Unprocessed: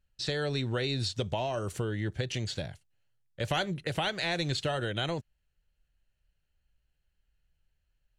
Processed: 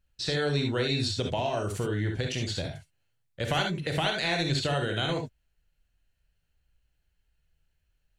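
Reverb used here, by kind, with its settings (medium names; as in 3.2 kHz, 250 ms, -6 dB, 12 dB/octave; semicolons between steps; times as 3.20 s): gated-style reverb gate 90 ms rising, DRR 2.5 dB; trim +1.5 dB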